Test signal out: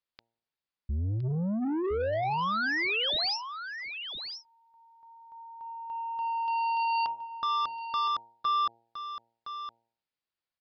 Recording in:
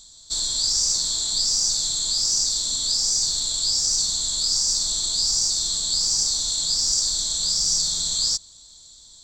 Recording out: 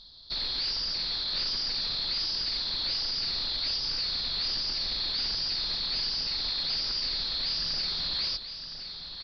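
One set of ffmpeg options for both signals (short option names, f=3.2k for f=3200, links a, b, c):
-af "bandreject=f=115.9:t=h:w=4,bandreject=f=231.8:t=h:w=4,bandreject=f=347.7:t=h:w=4,bandreject=f=463.6:t=h:w=4,bandreject=f=579.5:t=h:w=4,bandreject=f=695.4:t=h:w=4,bandreject=f=811.3:t=h:w=4,bandreject=f=927.2:t=h:w=4,aresample=11025,asoftclip=type=tanh:threshold=-27.5dB,aresample=44100,aecho=1:1:1014:0.335"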